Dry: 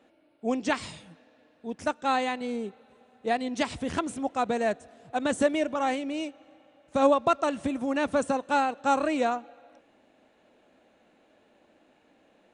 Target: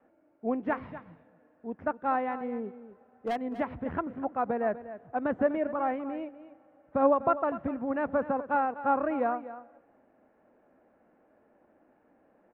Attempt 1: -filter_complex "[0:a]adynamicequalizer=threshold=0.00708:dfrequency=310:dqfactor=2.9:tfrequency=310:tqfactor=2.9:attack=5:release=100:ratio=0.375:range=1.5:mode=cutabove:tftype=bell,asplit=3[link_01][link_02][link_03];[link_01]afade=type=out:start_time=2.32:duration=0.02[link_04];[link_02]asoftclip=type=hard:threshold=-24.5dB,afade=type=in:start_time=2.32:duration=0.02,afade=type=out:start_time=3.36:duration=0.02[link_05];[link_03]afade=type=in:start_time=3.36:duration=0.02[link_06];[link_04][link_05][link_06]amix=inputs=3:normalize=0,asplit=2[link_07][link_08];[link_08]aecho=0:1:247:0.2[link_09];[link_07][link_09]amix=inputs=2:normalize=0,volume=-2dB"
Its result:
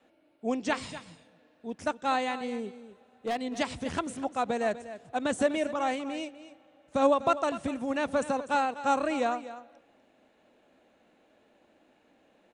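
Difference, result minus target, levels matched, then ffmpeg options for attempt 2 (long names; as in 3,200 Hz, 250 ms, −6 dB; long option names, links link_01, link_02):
2,000 Hz band +3.0 dB
-filter_complex "[0:a]adynamicequalizer=threshold=0.00708:dfrequency=310:dqfactor=2.9:tfrequency=310:tqfactor=2.9:attack=5:release=100:ratio=0.375:range=1.5:mode=cutabove:tftype=bell,lowpass=frequency=1700:width=0.5412,lowpass=frequency=1700:width=1.3066,asplit=3[link_01][link_02][link_03];[link_01]afade=type=out:start_time=2.32:duration=0.02[link_04];[link_02]asoftclip=type=hard:threshold=-24.5dB,afade=type=in:start_time=2.32:duration=0.02,afade=type=out:start_time=3.36:duration=0.02[link_05];[link_03]afade=type=in:start_time=3.36:duration=0.02[link_06];[link_04][link_05][link_06]amix=inputs=3:normalize=0,asplit=2[link_07][link_08];[link_08]aecho=0:1:247:0.2[link_09];[link_07][link_09]amix=inputs=2:normalize=0,volume=-2dB"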